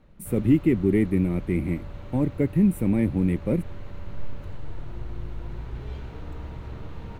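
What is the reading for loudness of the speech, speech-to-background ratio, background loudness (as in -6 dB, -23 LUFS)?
-24.0 LUFS, 16.0 dB, -40.0 LUFS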